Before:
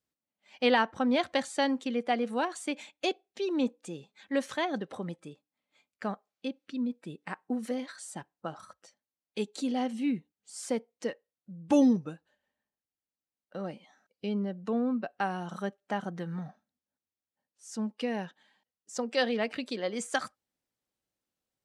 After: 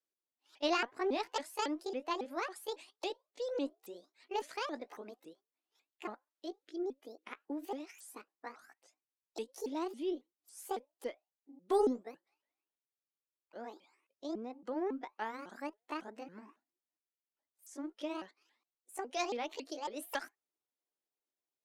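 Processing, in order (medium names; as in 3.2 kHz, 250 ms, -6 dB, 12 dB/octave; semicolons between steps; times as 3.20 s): sawtooth pitch modulation +9 st, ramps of 276 ms; resonant low shelf 230 Hz -11.5 dB, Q 1.5; Chebyshev shaper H 2 -20 dB, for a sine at -11 dBFS; trim -8 dB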